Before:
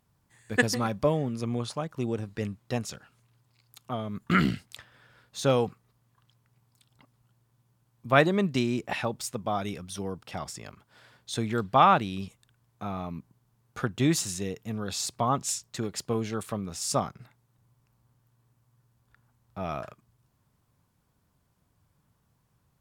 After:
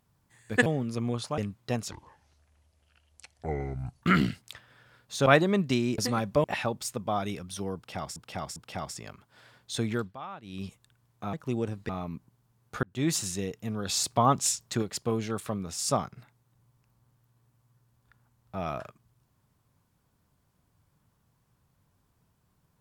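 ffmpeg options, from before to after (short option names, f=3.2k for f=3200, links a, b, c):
-filter_complex "[0:a]asplit=17[a][b][c][d][e][f][g][h][i][j][k][l][m][n][o][p][q];[a]atrim=end=0.662[r];[b]atrim=start=1.118:end=1.842[s];[c]atrim=start=2.398:end=2.934[t];[d]atrim=start=2.93:end=4.26,asetpts=PTS-STARTPTS,asetrate=27783,aresample=44100[u];[e]atrim=start=4.256:end=5.502[v];[f]atrim=start=8.108:end=8.832[w];[g]atrim=start=0.658:end=1.122[x];[h]atrim=start=8.828:end=10.552[y];[i]atrim=start=10.148:end=10.552[z];[j]atrim=start=10.148:end=11.76,asetpts=PTS-STARTPTS,afade=t=out:st=1.362:d=0.25:silence=0.0794328[aa];[k]atrim=start=11.76:end=12.01,asetpts=PTS-STARTPTS,volume=-22dB[ab];[l]atrim=start=12.01:end=12.922,asetpts=PTS-STARTPTS,afade=t=in:d=0.25:silence=0.0794328[ac];[m]atrim=start=1.838:end=2.402[ad];[n]atrim=start=12.918:end=13.86,asetpts=PTS-STARTPTS,afade=t=out:st=0.938:d=0.004:c=hsin[ae];[o]atrim=start=13.86:end=14.922,asetpts=PTS-STARTPTS,afade=t=in:d=0.34[af];[p]atrim=start=14.918:end=15.852,asetpts=PTS-STARTPTS,volume=3.5dB[ag];[q]atrim=start=15.848[ah];[r][s]acrossfade=d=0.004:c1=hsin:c2=hsin[ai];[ai][t]acrossfade=d=0.004:c1=hsin:c2=hsin[aj];[aj][u]acrossfade=d=0.004:c1=hsin:c2=hsin[ak];[ak][v]acrossfade=d=0.004:c1=hsin:c2=hsin[al];[al][w]acrossfade=d=0.004:c1=hsin:c2=hsin[am];[am][x]acrossfade=d=0.004:c1=hsin:c2=hsin[an];[an][y]acrossfade=d=0.004:c1=hsin:c2=hsin[ao];[ao][z]acrossfade=d=0.004:c1=hsin:c2=hsin[ap];[aa][ab][ac]concat=n=3:v=0:a=1[aq];[ap][aq]acrossfade=d=0.004:c1=hsin:c2=hsin[ar];[ar][ad]acrossfade=d=0.004:c1=hsin:c2=hsin[as];[ae][af]concat=n=2:v=0:a=1[at];[as][at]acrossfade=d=0.004:c1=hsin:c2=hsin[au];[au][ag]acrossfade=d=0.004:c1=hsin:c2=hsin[av];[av][ah]acrossfade=d=0.004:c1=hsin:c2=hsin"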